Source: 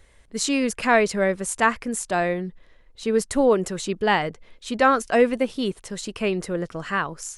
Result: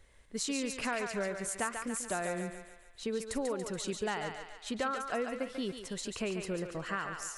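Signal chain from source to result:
dynamic equaliser 1,400 Hz, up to +7 dB, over −42 dBFS, Q 7.6
downward compressor, threshold −25 dBFS, peak gain reduction 13.5 dB
on a send: feedback echo with a high-pass in the loop 142 ms, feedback 56%, high-pass 560 Hz, level −5 dB
on the sum: level −7 dB

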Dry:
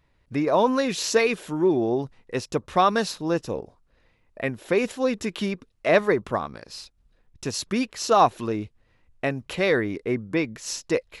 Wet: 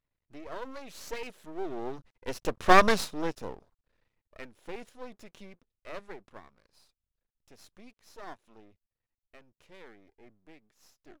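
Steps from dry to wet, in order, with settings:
turntable brake at the end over 0.31 s
source passing by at 0:02.79, 10 m/s, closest 1.9 metres
half-wave rectification
level +5.5 dB

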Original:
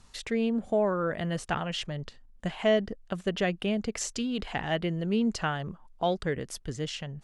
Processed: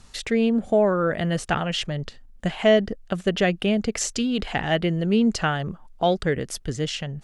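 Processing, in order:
parametric band 1,000 Hz −4.5 dB 0.31 octaves
level +7 dB

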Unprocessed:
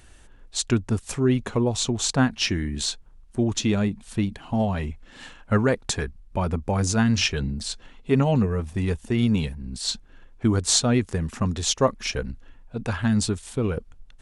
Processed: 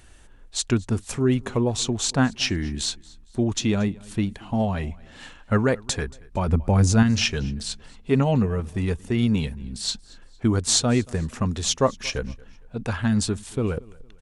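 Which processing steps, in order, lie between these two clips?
0:06.48–0:07.03: low-shelf EQ 220 Hz +8.5 dB
repeating echo 229 ms, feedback 36%, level −23.5 dB

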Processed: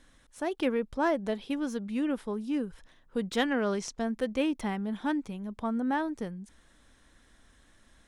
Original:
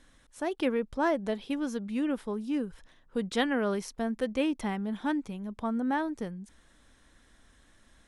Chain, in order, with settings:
stylus tracing distortion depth 0.021 ms
0:03.48–0:04.05: low-pass with resonance 6,900 Hz, resonance Q 1.9

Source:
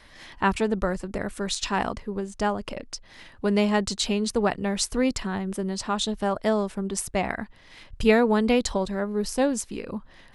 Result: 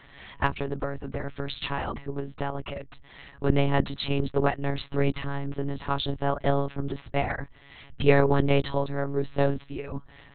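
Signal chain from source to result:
one-pitch LPC vocoder at 8 kHz 140 Hz
0:00.46–0:02.55: downward compressor 5 to 1, threshold −24 dBFS, peak gain reduction 8 dB

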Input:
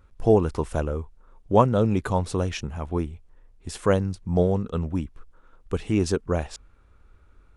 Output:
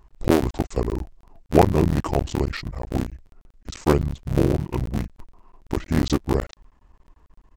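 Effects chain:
sub-harmonics by changed cycles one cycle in 3, muted
pitch shifter −5 semitones
level +3.5 dB

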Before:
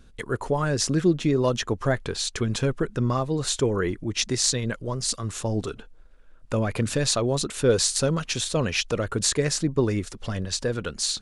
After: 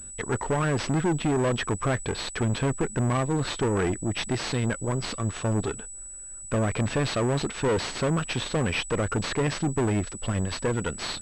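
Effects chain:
tube saturation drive 27 dB, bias 0.6
switching amplifier with a slow clock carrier 7,900 Hz
level +6 dB

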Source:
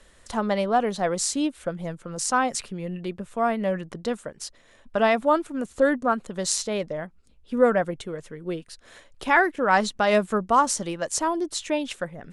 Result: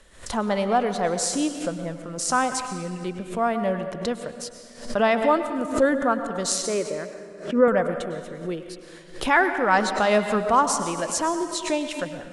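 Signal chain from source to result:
0:06.65–0:07.68: loudspeaker in its box 180–2,600 Hz, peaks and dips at 380 Hz +7 dB, 800 Hz −8 dB, 1,200 Hz +3 dB
convolution reverb RT60 1.8 s, pre-delay 97 ms, DRR 8 dB
background raised ahead of every attack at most 120 dB per second

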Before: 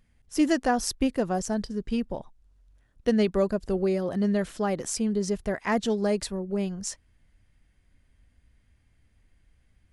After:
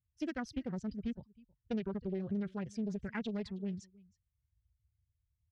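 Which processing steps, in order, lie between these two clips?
spectral dynamics exaggerated over time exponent 1.5
high-pass filter 59 Hz 24 dB per octave
guitar amp tone stack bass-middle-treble 6-0-2
downward compressor 6 to 1, threshold −46 dBFS, peak gain reduction 7 dB
tempo change 1.8×
high-frequency loss of the air 250 metres
single-tap delay 317 ms −23.5 dB
highs frequency-modulated by the lows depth 0.38 ms
level +14.5 dB

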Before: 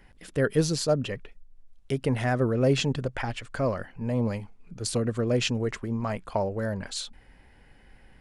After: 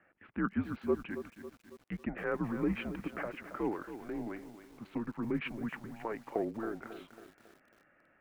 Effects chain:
single-sideband voice off tune −220 Hz 400–2,600 Hz
feedback echo at a low word length 274 ms, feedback 55%, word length 8 bits, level −11 dB
level −5.5 dB

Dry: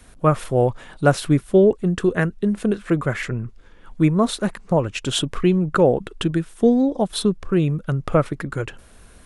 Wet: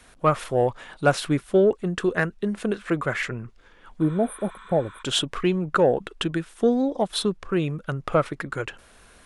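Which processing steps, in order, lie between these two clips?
healed spectral selection 0:04.05–0:05.00, 870–8,800 Hz before
mid-hump overdrive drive 9 dB, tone 5,500 Hz, clips at −2.5 dBFS
level −3.5 dB

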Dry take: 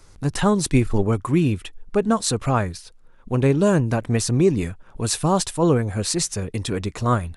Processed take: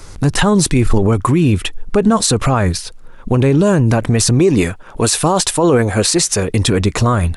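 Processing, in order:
0:04.39–0:06.50: bass and treble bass −8 dB, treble 0 dB
boost into a limiter +18.5 dB
level −3.5 dB

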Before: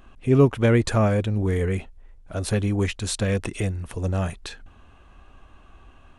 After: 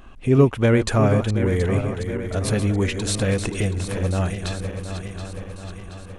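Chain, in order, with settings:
feedback delay that plays each chunk backwards 363 ms, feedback 72%, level −9.5 dB
in parallel at −2.5 dB: downward compressor, threshold −30 dBFS, peak gain reduction 18.5 dB

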